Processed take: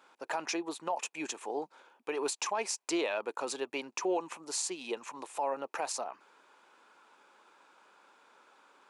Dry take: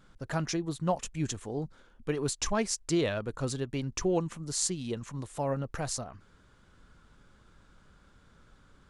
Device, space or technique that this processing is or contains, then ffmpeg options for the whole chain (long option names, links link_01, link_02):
laptop speaker: -af "highpass=frequency=340:width=0.5412,highpass=frequency=340:width=1.3066,equalizer=frequency=890:width_type=o:width=0.56:gain=11.5,equalizer=frequency=2500:width_type=o:width=0.23:gain=10,alimiter=limit=-23dB:level=0:latency=1:release=66"